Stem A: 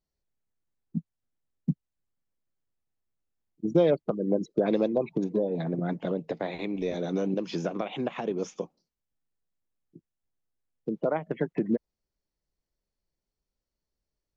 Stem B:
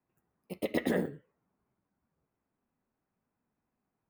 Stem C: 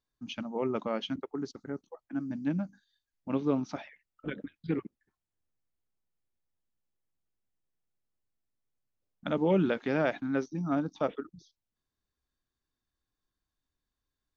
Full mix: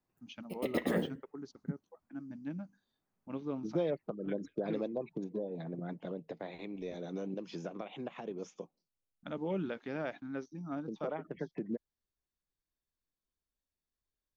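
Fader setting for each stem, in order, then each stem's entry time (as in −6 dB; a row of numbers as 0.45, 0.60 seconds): −11.0, −2.5, −10.0 decibels; 0.00, 0.00, 0.00 seconds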